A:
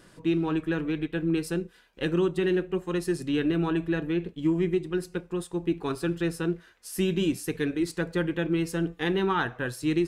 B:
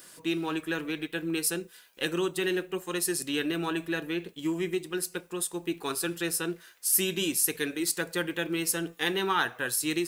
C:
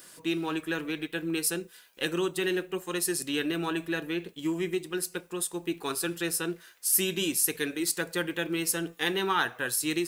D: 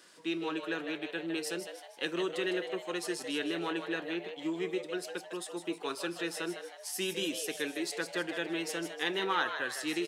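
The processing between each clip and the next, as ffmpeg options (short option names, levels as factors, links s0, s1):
-af "aemphasis=mode=production:type=riaa"
-af anull
-filter_complex "[0:a]acrossover=split=190 7000:gain=0.158 1 0.126[s0][s1][s2];[s0][s1][s2]amix=inputs=3:normalize=0,asplit=6[s3][s4][s5][s6][s7][s8];[s4]adelay=156,afreqshift=130,volume=0.376[s9];[s5]adelay=312,afreqshift=260,volume=0.174[s10];[s6]adelay=468,afreqshift=390,volume=0.0794[s11];[s7]adelay=624,afreqshift=520,volume=0.0367[s12];[s8]adelay=780,afreqshift=650,volume=0.0168[s13];[s3][s9][s10][s11][s12][s13]amix=inputs=6:normalize=0,volume=0.631"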